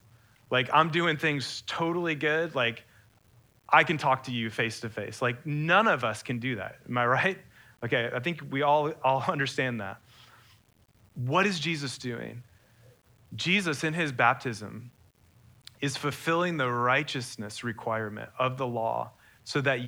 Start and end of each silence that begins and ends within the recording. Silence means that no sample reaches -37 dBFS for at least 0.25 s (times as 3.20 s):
2.77–3.69 s
7.36–7.83 s
9.94–11.18 s
12.38–13.33 s
14.80–15.67 s
19.07–19.47 s